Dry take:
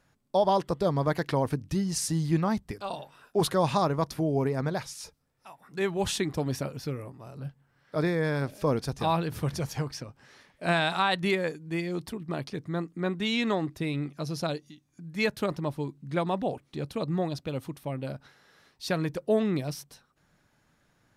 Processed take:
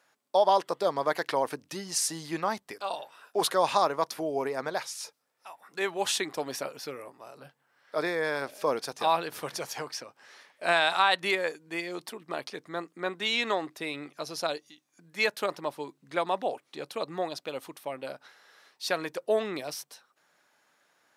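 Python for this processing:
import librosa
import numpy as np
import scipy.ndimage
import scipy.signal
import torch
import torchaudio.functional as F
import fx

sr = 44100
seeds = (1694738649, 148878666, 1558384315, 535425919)

y = scipy.signal.sosfilt(scipy.signal.butter(2, 520.0, 'highpass', fs=sr, output='sos'), x)
y = y * librosa.db_to_amplitude(3.0)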